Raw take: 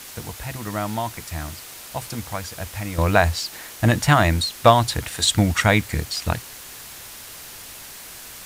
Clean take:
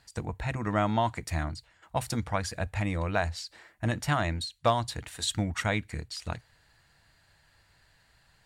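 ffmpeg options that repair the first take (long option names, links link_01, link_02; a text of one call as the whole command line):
ffmpeg -i in.wav -af "afwtdn=0.013,asetnsamples=nb_out_samples=441:pad=0,asendcmd='2.98 volume volume -11.5dB',volume=0dB" out.wav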